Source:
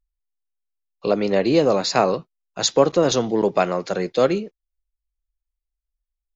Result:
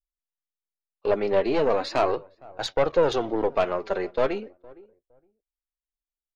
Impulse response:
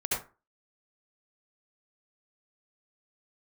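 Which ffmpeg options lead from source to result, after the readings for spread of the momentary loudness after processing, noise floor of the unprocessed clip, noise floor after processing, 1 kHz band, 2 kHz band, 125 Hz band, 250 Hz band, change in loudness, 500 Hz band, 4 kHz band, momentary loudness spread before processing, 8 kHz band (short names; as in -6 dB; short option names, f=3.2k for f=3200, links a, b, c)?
11 LU, -84 dBFS, under -85 dBFS, -4.0 dB, -3.5 dB, -10.0 dB, -8.5 dB, -5.0 dB, -4.0 dB, -9.5 dB, 10 LU, n/a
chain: -filter_complex "[0:a]lowpass=2.7k,agate=range=-17dB:threshold=-32dB:ratio=16:detection=peak,equalizer=f=180:t=o:w=0.66:g=-14.5,aeval=exprs='(tanh(5.01*val(0)+0.4)-tanh(0.4))/5.01':c=same,asplit=2[a][b];[b]adelay=463,lowpass=f=850:p=1,volume=-22dB,asplit=2[c][d];[d]adelay=463,lowpass=f=850:p=1,volume=0.24[e];[a][c][e]amix=inputs=3:normalize=0,flanger=delay=1.3:depth=3.8:regen=39:speed=0.38:shape=sinusoidal,volume=3.5dB"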